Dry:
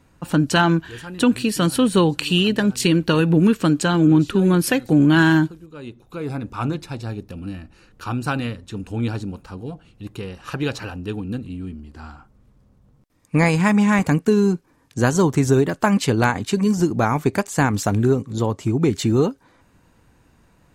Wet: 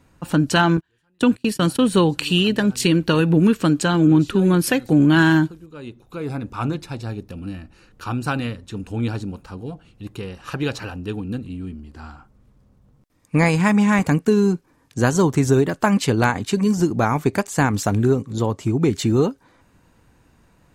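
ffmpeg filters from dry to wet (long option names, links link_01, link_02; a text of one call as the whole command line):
ffmpeg -i in.wav -filter_complex "[0:a]asettb=1/sr,asplit=3[link_01][link_02][link_03];[link_01]atrim=end=0.774[link_04];[link_02]atrim=start=0.77:end=1.79,asetpts=PTS-STARTPTS,afade=type=in:duration=0.004:curve=qsin,afade=type=out:start_time=1.016:duration=0.004:curve=qsin,agate=range=-32dB:threshold=-26dB:ratio=16:release=100:detection=peak[link_05];[link_03]atrim=start=1.786[link_06];[link_04][link_05]acrossfade=duration=0.004:curve1=hsin:curve2=qsin[link_07];[link_07][link_06]acrossfade=duration=0.004:curve1=qsin:curve2=hsin" out.wav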